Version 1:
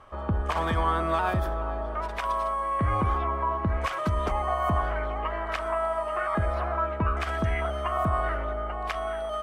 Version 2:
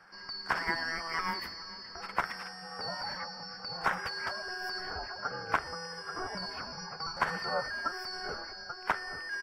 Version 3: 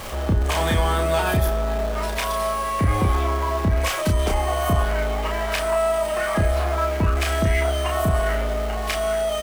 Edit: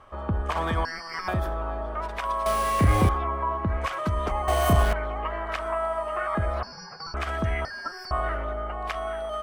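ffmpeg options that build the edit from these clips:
-filter_complex "[1:a]asplit=3[a][b][c];[2:a]asplit=2[d][e];[0:a]asplit=6[f][g][h][i][j][k];[f]atrim=end=0.852[l];[a]atrim=start=0.848:end=1.282[m];[g]atrim=start=1.278:end=2.462[n];[d]atrim=start=2.458:end=3.092[o];[h]atrim=start=3.088:end=4.482[p];[e]atrim=start=4.478:end=4.932[q];[i]atrim=start=4.928:end=6.632[r];[b]atrim=start=6.628:end=7.142[s];[j]atrim=start=7.138:end=7.652[t];[c]atrim=start=7.648:end=8.112[u];[k]atrim=start=8.108[v];[l][m]acrossfade=d=0.004:c1=hsin:c2=hsin[w];[w][n]acrossfade=d=0.004:c1=hsin:c2=hsin[x];[x][o]acrossfade=d=0.004:c1=hsin:c2=hsin[y];[y][p]acrossfade=d=0.004:c1=hsin:c2=hsin[z];[z][q]acrossfade=d=0.004:c1=hsin:c2=hsin[aa];[aa][r]acrossfade=d=0.004:c1=hsin:c2=hsin[ab];[ab][s]acrossfade=d=0.004:c1=hsin:c2=hsin[ac];[ac][t]acrossfade=d=0.004:c1=hsin:c2=hsin[ad];[ad][u]acrossfade=d=0.004:c1=hsin:c2=hsin[ae];[ae][v]acrossfade=d=0.004:c1=hsin:c2=hsin"

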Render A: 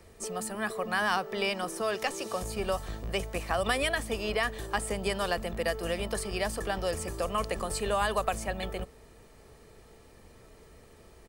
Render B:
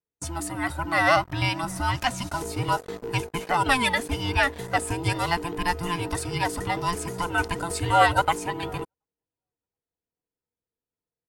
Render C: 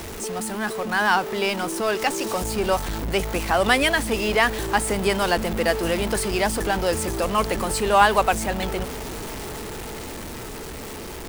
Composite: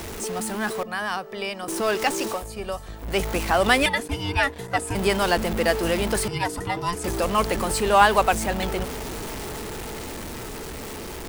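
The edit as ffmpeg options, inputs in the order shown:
-filter_complex "[0:a]asplit=2[a][b];[1:a]asplit=2[c][d];[2:a]asplit=5[e][f][g][h][i];[e]atrim=end=0.832[j];[a]atrim=start=0.828:end=1.682[k];[f]atrim=start=1.678:end=2.49[l];[b]atrim=start=2.25:end=3.19[m];[g]atrim=start=2.95:end=3.862[n];[c]atrim=start=3.858:end=4.952[o];[h]atrim=start=4.948:end=6.282[p];[d]atrim=start=6.278:end=7.042[q];[i]atrim=start=7.038[r];[j][k]acrossfade=d=0.004:c1=hsin:c2=hsin[s];[s][l]acrossfade=d=0.004:c1=hsin:c2=hsin[t];[t][m]acrossfade=d=0.24:c1=tri:c2=tri[u];[u][n]acrossfade=d=0.24:c1=tri:c2=tri[v];[v][o]acrossfade=d=0.004:c1=hsin:c2=hsin[w];[w][p]acrossfade=d=0.004:c1=hsin:c2=hsin[x];[x][q]acrossfade=d=0.004:c1=hsin:c2=hsin[y];[y][r]acrossfade=d=0.004:c1=hsin:c2=hsin"

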